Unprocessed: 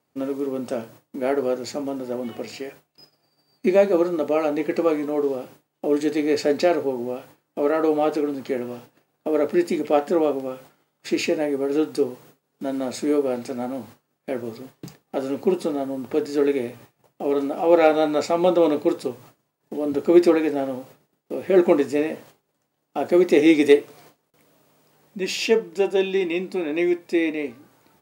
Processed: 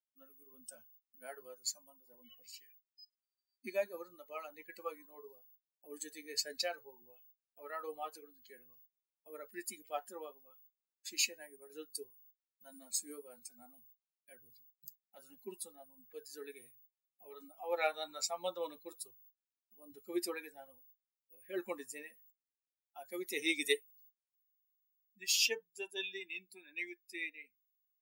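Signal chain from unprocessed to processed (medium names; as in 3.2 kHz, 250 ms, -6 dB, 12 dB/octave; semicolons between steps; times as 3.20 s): expander on every frequency bin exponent 2; spectral noise reduction 11 dB; differentiator; trim +5 dB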